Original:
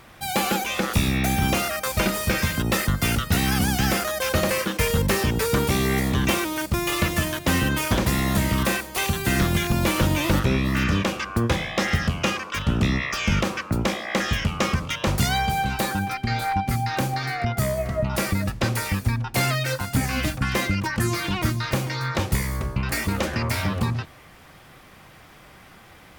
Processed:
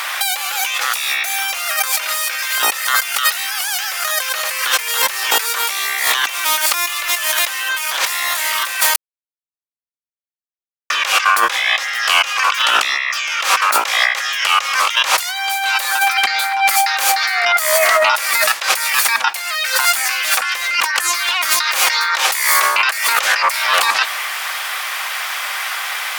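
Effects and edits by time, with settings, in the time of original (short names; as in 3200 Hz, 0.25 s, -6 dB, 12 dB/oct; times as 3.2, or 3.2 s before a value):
8.96–10.9 mute
whole clip: Bessel high-pass 1300 Hz, order 4; negative-ratio compressor -40 dBFS, ratio -1; maximiser +23 dB; gain -1 dB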